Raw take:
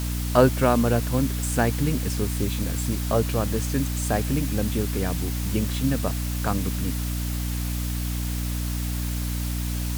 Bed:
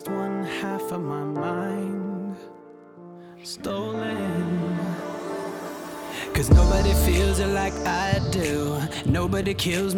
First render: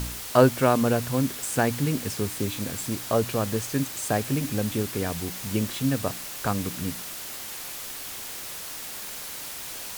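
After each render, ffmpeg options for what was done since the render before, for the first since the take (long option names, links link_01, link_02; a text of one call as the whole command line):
ffmpeg -i in.wav -af "bandreject=frequency=60:width_type=h:width=4,bandreject=frequency=120:width_type=h:width=4,bandreject=frequency=180:width_type=h:width=4,bandreject=frequency=240:width_type=h:width=4,bandreject=frequency=300:width_type=h:width=4" out.wav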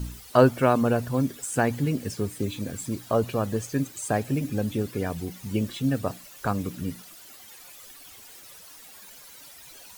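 ffmpeg -i in.wav -af "afftdn=noise_reduction=14:noise_floor=-37" out.wav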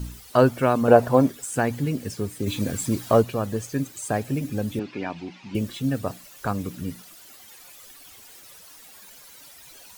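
ffmpeg -i in.wav -filter_complex "[0:a]asettb=1/sr,asplit=3[link_01][link_02][link_03];[link_01]atrim=end=0.884[link_04];[link_02]atrim=start=0.88:end=1.3,asetpts=PTS-STARTPTS,afade=type=in:duration=0.004:curve=qsin,afade=type=out:start_time=0.416:duration=0.004:curve=qsin,equalizer=frequency=700:width_type=o:width=2.2:gain=14.5[link_05];[link_03]atrim=start=1.296[link_06];[link_04][link_05]acrossfade=duration=0.004:curve1=hsin:curve2=qsin[link_07];[link_07][link_06]acrossfade=duration=0.004:curve1=qsin:curve2=hsin,asplit=3[link_08][link_09][link_10];[link_08]afade=type=out:start_time=2.46:duration=0.02[link_11];[link_09]acontrast=59,afade=type=in:start_time=2.46:duration=0.02,afade=type=out:start_time=3.21:duration=0.02[link_12];[link_10]afade=type=in:start_time=3.21:duration=0.02[link_13];[link_11][link_12][link_13]amix=inputs=3:normalize=0,asettb=1/sr,asplit=3[link_14][link_15][link_16];[link_14]atrim=end=4.794[link_17];[link_15]atrim=start=4.79:end=5.55,asetpts=PTS-STARTPTS,afade=type=in:duration=0.004:curve=qsin,afade=type=out:start_time=0.756:duration=0.004:curve=qsin,highpass=210,equalizer=frequency=310:width_type=q:width=4:gain=4,equalizer=frequency=460:width_type=q:width=4:gain=-9,equalizer=frequency=890:width_type=q:width=4:gain=7,equalizer=frequency=2500:width_type=q:width=4:gain=9,lowpass=frequency=4900:width=0.5412,lowpass=frequency=4900:width=1.3066[link_18];[link_16]atrim=start=5.546[link_19];[link_17][link_18]acrossfade=duration=0.004:curve1=hsin:curve2=qsin[link_20];[link_20][link_19]acrossfade=duration=0.004:curve1=qsin:curve2=hsin" out.wav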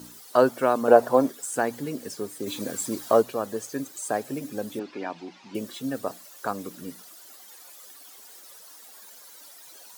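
ffmpeg -i in.wav -af "highpass=320,equalizer=frequency=2500:width=1.7:gain=-6.5" out.wav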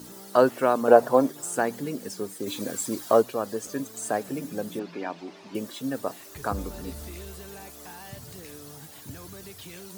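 ffmpeg -i in.wav -i bed.wav -filter_complex "[1:a]volume=-20.5dB[link_01];[0:a][link_01]amix=inputs=2:normalize=0" out.wav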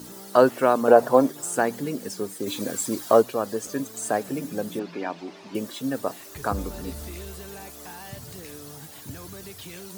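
ffmpeg -i in.wav -af "volume=2.5dB,alimiter=limit=-3dB:level=0:latency=1" out.wav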